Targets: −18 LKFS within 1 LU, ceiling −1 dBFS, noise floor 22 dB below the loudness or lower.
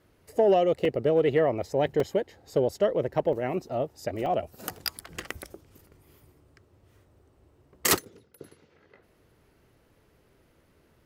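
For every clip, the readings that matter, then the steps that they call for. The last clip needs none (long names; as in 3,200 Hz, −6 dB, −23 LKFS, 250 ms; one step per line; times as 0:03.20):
number of dropouts 5; longest dropout 2.6 ms; integrated loudness −27.0 LKFS; sample peak −10.5 dBFS; target loudness −18.0 LKFS
→ repair the gap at 0:00.85/0:02.00/0:03.33/0:04.26/0:04.78, 2.6 ms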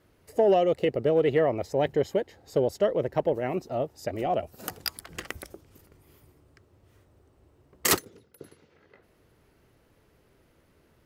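number of dropouts 0; integrated loudness −27.0 LKFS; sample peak −10.5 dBFS; target loudness −18.0 LKFS
→ level +9 dB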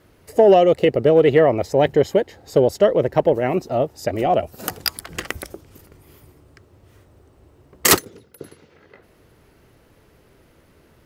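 integrated loudness −18.0 LKFS; sample peak −1.5 dBFS; background noise floor −55 dBFS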